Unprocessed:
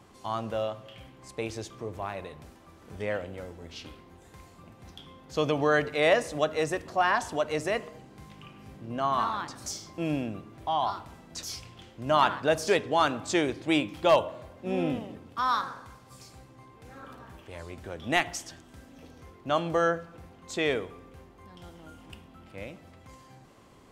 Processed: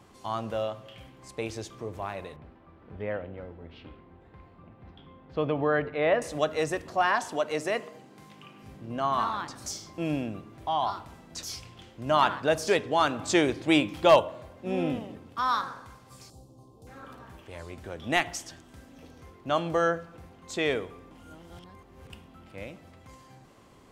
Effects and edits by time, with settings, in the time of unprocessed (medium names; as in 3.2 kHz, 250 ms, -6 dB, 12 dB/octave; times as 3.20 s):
2.36–6.22 s: distance through air 440 m
7.06–8.63 s: high-pass 170 Hz
13.19–14.20 s: gain +3 dB
16.30–16.87 s: Butterworth band-stop 1.9 kHz, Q 0.5
21.11–22.10 s: reverse